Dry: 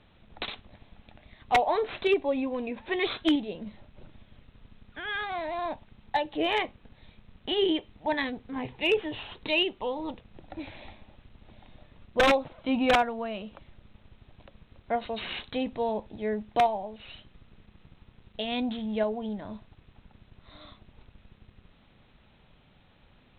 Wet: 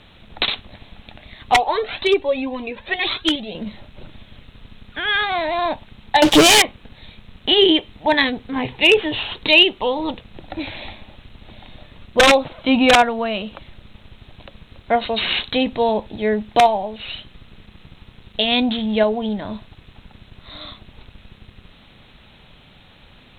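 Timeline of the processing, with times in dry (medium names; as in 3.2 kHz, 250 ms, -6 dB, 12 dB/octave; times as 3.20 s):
1.54–3.55 s: Shepard-style flanger rising 1.9 Hz
6.22–6.62 s: waveshaping leveller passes 5
whole clip: peaking EQ 7.9 kHz +11.5 dB 2.4 oct; loudness maximiser +11.5 dB; trim -1 dB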